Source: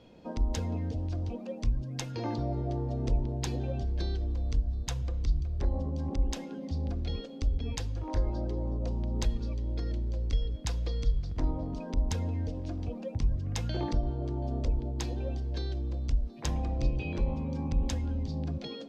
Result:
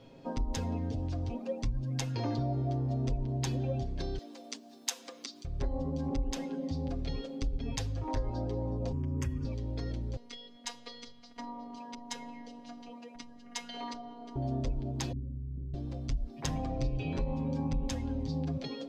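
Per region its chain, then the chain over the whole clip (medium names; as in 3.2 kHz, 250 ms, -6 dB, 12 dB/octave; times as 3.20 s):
4.18–5.45 s: steep high-pass 200 Hz 72 dB/octave + tilt EQ +3 dB/octave + upward compressor, threshold -49 dBFS
8.92–9.45 s: frequency shift +25 Hz + static phaser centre 1.7 kHz, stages 4
10.16–14.36 s: frequency weighting A + robot voice 239 Hz
15.12–15.74 s: inverse Chebyshev low-pass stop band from 1.4 kHz, stop band 80 dB + flutter echo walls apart 5.6 m, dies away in 0.54 s
whole clip: comb 7.4 ms, depth 67%; compression 4:1, threshold -28 dBFS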